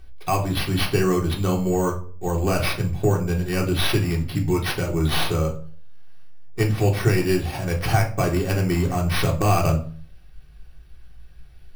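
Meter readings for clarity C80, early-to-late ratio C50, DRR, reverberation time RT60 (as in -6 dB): 15.5 dB, 11.5 dB, -1.0 dB, 0.45 s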